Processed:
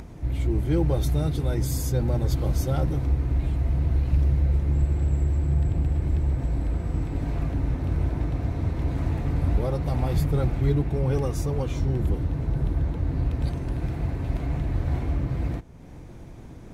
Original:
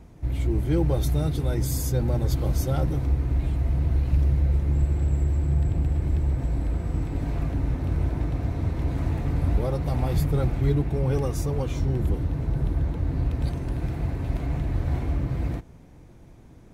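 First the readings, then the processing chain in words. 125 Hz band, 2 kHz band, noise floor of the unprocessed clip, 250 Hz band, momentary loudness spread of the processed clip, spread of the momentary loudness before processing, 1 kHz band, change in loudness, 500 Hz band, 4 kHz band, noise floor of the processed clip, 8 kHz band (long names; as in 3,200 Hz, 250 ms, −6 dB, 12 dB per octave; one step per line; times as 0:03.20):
0.0 dB, 0.0 dB, −48 dBFS, 0.0 dB, 5 LU, 5 LU, 0.0 dB, 0.0 dB, 0.0 dB, −0.5 dB, −42 dBFS, −1.5 dB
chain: upward compression, threshold −33 dBFS
high-shelf EQ 11,000 Hz −4.5 dB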